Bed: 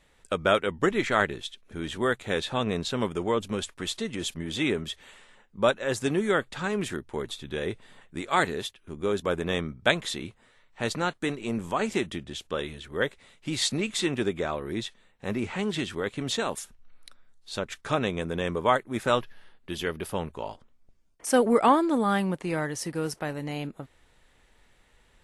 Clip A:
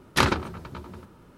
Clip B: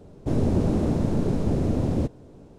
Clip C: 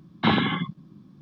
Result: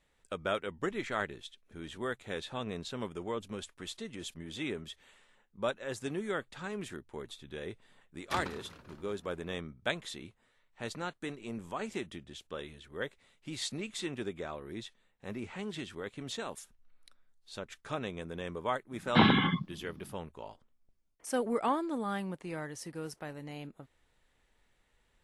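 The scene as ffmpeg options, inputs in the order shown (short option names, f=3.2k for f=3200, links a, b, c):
-filter_complex "[0:a]volume=-10.5dB[a];[1:a]asplit=6[b][c][d][e][f][g];[c]adelay=194,afreqshift=88,volume=-15dB[h];[d]adelay=388,afreqshift=176,volume=-20.2dB[i];[e]adelay=582,afreqshift=264,volume=-25.4dB[j];[f]adelay=776,afreqshift=352,volume=-30.6dB[k];[g]adelay=970,afreqshift=440,volume=-35.8dB[l];[b][h][i][j][k][l]amix=inputs=6:normalize=0,atrim=end=1.37,asetpts=PTS-STARTPTS,volume=-17dB,afade=t=in:d=0.004:c=hsin,afade=t=out:st=1.366:d=0.004:c=hsin,adelay=8140[m];[3:a]atrim=end=1.21,asetpts=PTS-STARTPTS,volume=-2dB,afade=t=in:d=0.004:c=hsin,afade=t=out:st=1.206:d=0.004:c=hsin,adelay=834372S[n];[a][m][n]amix=inputs=3:normalize=0"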